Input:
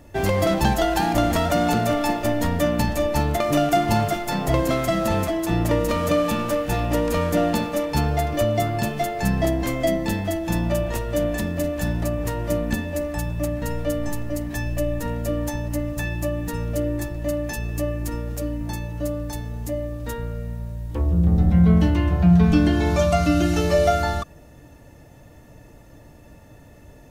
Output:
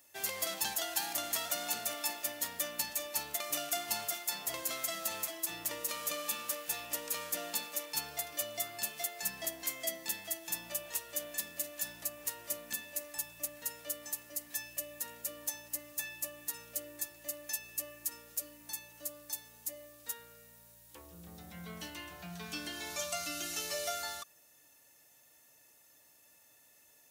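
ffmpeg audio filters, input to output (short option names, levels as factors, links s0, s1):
-af "aderivative,volume=0.891"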